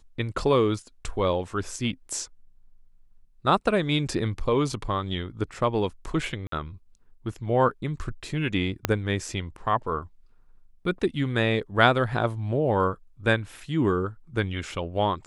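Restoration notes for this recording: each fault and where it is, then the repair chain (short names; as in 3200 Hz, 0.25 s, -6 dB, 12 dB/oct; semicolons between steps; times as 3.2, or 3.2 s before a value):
6.47–6.52 gap 53 ms
8.85 pop -7 dBFS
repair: de-click; interpolate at 6.47, 53 ms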